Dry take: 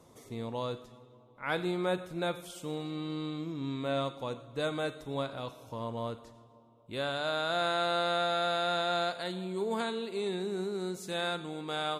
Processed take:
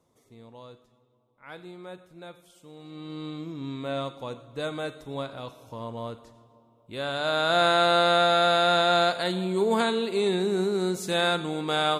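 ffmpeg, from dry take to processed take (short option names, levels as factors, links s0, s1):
-af "volume=2.82,afade=t=in:st=2.74:d=0.55:silence=0.251189,afade=t=in:st=6.97:d=0.62:silence=0.398107"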